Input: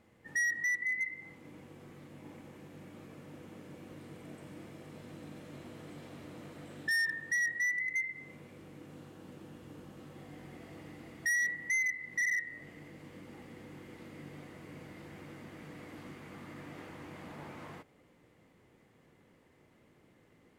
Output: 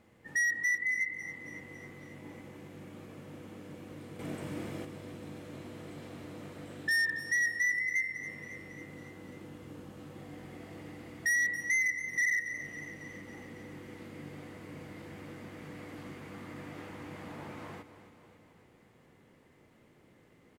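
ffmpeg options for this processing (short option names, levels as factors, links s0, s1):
-filter_complex "[0:a]asettb=1/sr,asplit=3[s0][s1][s2];[s0]atrim=end=4.194[s3];[s1]atrim=start=4.19:end=4.85,asetpts=PTS-STARTPTS,afade=t=in:d=0.004:c=qsin,afade=t=out:st=0.656:d=0.004:c=qsin,acontrast=87[s4];[s2]atrim=start=4.846[s5];[s3][s4]acrossfade=d=0.004:c1=hsin:c2=qsin[s6];[s6][s5]acrossfade=d=0.004:c1=qsin:c2=hsin,aecho=1:1:275|550|825|1100|1375|1650:0.224|0.132|0.0779|0.046|0.0271|0.016,volume=1.26"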